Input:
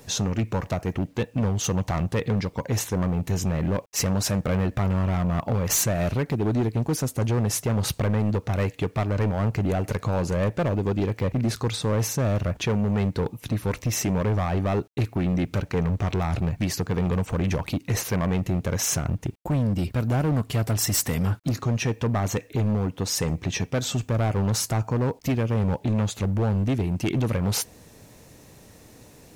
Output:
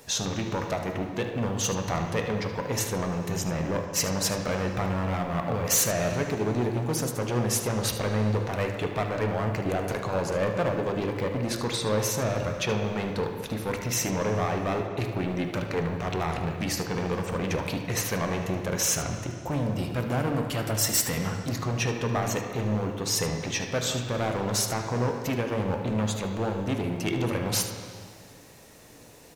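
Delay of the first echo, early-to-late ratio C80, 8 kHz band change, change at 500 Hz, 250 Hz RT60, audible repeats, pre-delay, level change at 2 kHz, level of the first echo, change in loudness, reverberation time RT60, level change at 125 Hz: 75 ms, 6.0 dB, +0.5 dB, 0.0 dB, 2.0 s, 1, 5 ms, +1.5 dB, −12.5 dB, −2.5 dB, 2.1 s, −6.5 dB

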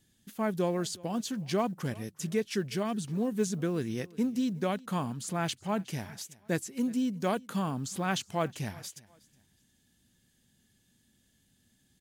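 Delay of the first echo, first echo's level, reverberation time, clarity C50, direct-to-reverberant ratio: 365 ms, −23.0 dB, no reverb audible, no reverb audible, no reverb audible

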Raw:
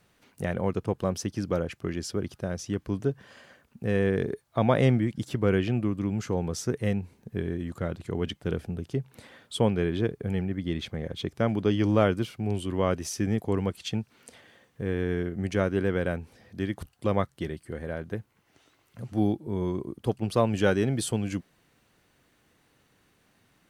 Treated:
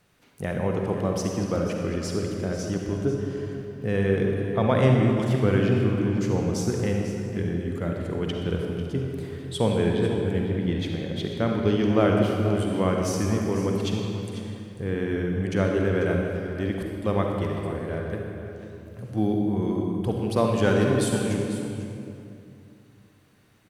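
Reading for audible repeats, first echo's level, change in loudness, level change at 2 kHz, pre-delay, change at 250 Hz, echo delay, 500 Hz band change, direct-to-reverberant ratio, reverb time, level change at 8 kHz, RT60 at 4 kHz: 1, −12.5 dB, +3.5 dB, +3.0 dB, 39 ms, +4.0 dB, 494 ms, +3.5 dB, 0.5 dB, 2.6 s, +2.0 dB, 1.9 s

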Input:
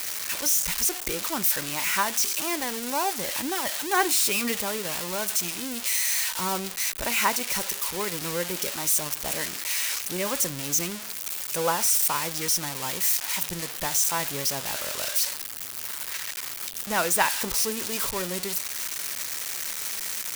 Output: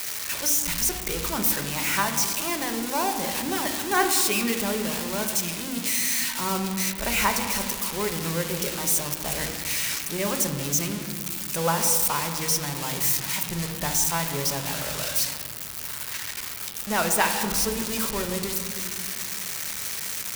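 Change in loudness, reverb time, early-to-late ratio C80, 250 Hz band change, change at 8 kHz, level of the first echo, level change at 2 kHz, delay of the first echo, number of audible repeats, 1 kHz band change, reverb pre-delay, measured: +0.5 dB, 2.0 s, 8.5 dB, +5.0 dB, 0.0 dB, no echo audible, +1.0 dB, no echo audible, no echo audible, +1.5 dB, 4 ms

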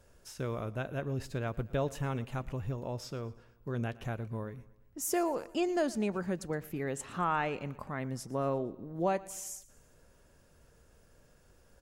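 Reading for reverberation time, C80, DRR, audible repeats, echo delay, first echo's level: no reverb audible, no reverb audible, no reverb audible, 3, 116 ms, −20.5 dB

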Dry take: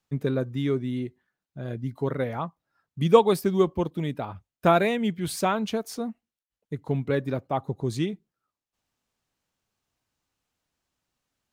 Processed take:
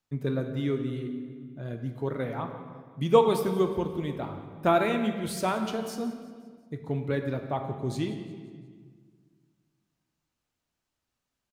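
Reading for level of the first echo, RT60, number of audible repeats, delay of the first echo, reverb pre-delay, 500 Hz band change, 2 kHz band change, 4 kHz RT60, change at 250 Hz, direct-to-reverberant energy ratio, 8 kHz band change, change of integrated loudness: −17.5 dB, 1.7 s, 3, 177 ms, 3 ms, −2.5 dB, −3.0 dB, 1.4 s, −2.5 dB, 5.0 dB, −3.5 dB, −3.0 dB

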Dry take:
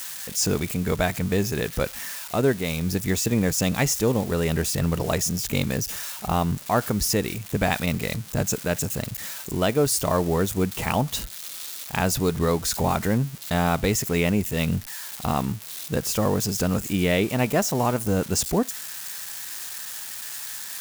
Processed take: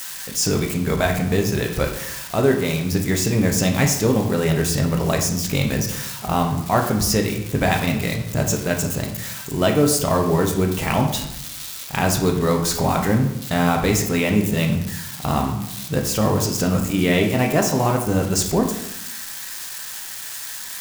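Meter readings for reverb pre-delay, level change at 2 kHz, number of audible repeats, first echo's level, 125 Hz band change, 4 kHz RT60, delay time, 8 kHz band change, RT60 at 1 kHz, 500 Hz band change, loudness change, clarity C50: 5 ms, +4.0 dB, no echo audible, no echo audible, +4.5 dB, 0.55 s, no echo audible, +3.0 dB, 0.80 s, +4.0 dB, +4.0 dB, 7.0 dB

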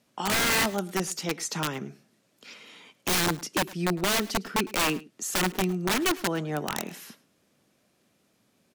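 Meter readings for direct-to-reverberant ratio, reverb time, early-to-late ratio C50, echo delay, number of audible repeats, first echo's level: no reverb audible, no reverb audible, no reverb audible, 106 ms, 1, −20.5 dB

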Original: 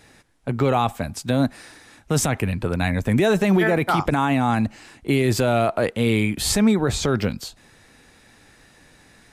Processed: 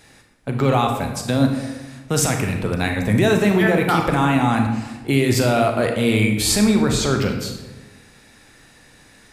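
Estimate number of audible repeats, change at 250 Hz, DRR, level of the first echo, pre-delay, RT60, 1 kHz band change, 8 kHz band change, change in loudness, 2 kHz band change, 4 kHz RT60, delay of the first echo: no echo audible, +2.5 dB, 3.5 dB, no echo audible, 29 ms, 1.2 s, +2.0 dB, +4.0 dB, +2.5 dB, +3.0 dB, 0.75 s, no echo audible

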